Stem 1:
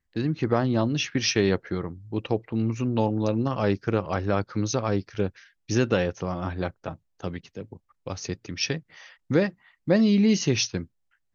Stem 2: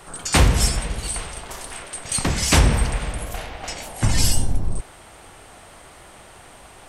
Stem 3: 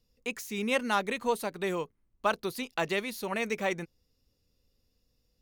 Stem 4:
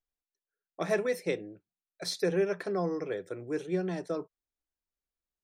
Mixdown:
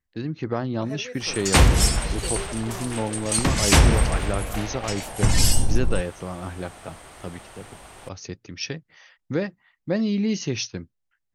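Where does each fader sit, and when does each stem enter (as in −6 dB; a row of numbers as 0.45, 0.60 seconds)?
−3.5, 0.0, −15.0, −9.0 decibels; 0.00, 1.20, 1.05, 0.00 seconds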